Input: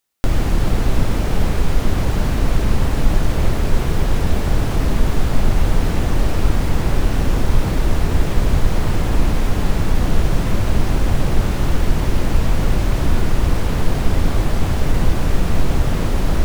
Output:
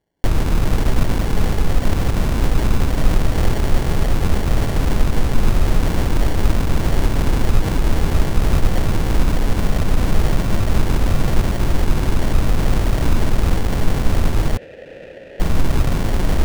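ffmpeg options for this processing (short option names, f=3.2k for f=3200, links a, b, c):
-filter_complex "[0:a]acrusher=samples=35:mix=1:aa=0.000001,asettb=1/sr,asplit=3[a][b][c];[a]atrim=end=14.574[d];[b]atrim=start=14.57:end=15.4,asetpts=PTS-STARTPTS,afade=t=in:d=0.004:c=qsin,afade=t=out:st=0.826:d=0.004:c=qsin,asplit=3[e][f][g];[e]bandpass=f=530:t=q:w=8,volume=0dB[h];[f]bandpass=f=1.84k:t=q:w=8,volume=-6dB[i];[g]bandpass=f=2.48k:t=q:w=8,volume=-9dB[j];[h][i][j]amix=inputs=3:normalize=0[k];[c]atrim=start=15.396[l];[d][k]acrossfade=d=0.004:c1=hsin:c2=qsin[m];[m][l]acrossfade=d=0.004:c1=qsin:c2=hsin"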